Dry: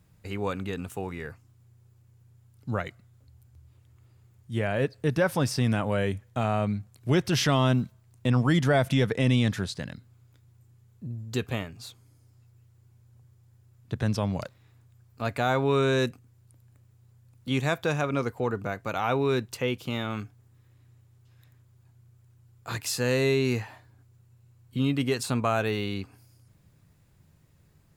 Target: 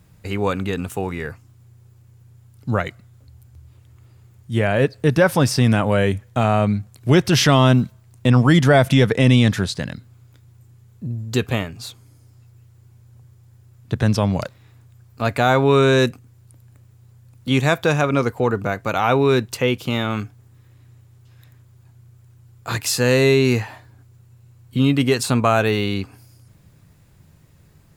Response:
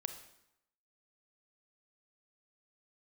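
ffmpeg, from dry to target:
-af "volume=9dB"

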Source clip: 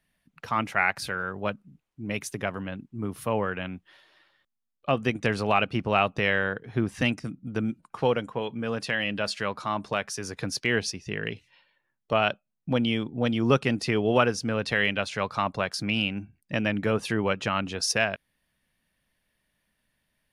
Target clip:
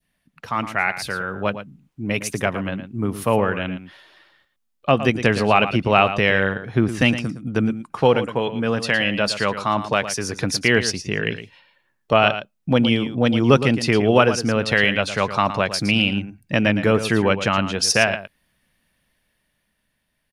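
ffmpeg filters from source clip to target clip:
-af "adynamicequalizer=threshold=0.0224:dfrequency=1400:dqfactor=0.75:tfrequency=1400:tqfactor=0.75:attack=5:release=100:ratio=0.375:range=2:mode=cutabove:tftype=bell,dynaudnorm=f=180:g=13:m=6dB,aecho=1:1:113:0.266,volume=2.5dB"

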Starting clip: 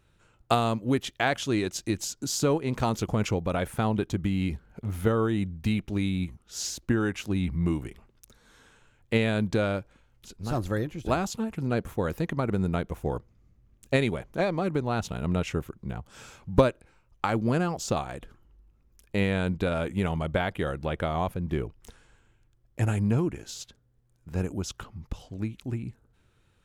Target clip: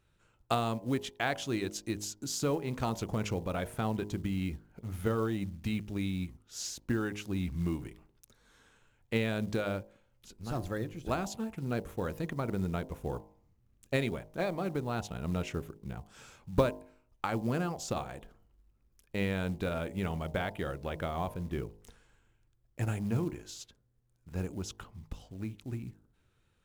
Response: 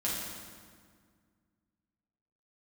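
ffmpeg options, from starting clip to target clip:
-af "bandreject=f=51.8:t=h:w=4,bandreject=f=103.6:t=h:w=4,bandreject=f=155.4:t=h:w=4,bandreject=f=207.2:t=h:w=4,bandreject=f=259:t=h:w=4,bandreject=f=310.8:t=h:w=4,bandreject=f=362.6:t=h:w=4,bandreject=f=414.4:t=h:w=4,bandreject=f=466.2:t=h:w=4,bandreject=f=518:t=h:w=4,bandreject=f=569.8:t=h:w=4,bandreject=f=621.6:t=h:w=4,bandreject=f=673.4:t=h:w=4,bandreject=f=725.2:t=h:w=4,bandreject=f=777:t=h:w=4,bandreject=f=828.8:t=h:w=4,bandreject=f=880.6:t=h:w=4,bandreject=f=932.4:t=h:w=4,bandreject=f=984.2:t=h:w=4,bandreject=f=1.036k:t=h:w=4,acrusher=bits=7:mode=log:mix=0:aa=0.000001,volume=-6dB"

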